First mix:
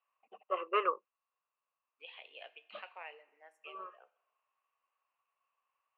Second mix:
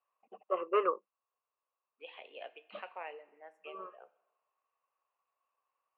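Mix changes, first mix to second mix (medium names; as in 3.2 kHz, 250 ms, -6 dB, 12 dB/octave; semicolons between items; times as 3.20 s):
second voice +4.5 dB; master: add tilt EQ -4 dB/octave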